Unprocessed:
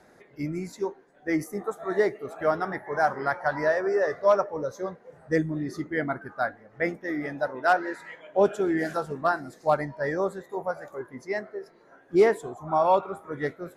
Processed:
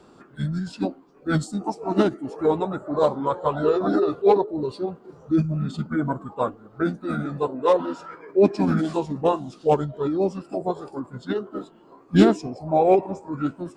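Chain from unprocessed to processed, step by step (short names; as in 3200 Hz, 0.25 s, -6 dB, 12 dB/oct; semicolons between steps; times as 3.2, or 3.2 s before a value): formant shift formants -6 st; dynamic EQ 1400 Hz, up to -5 dB, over -41 dBFS, Q 1.4; gain +5 dB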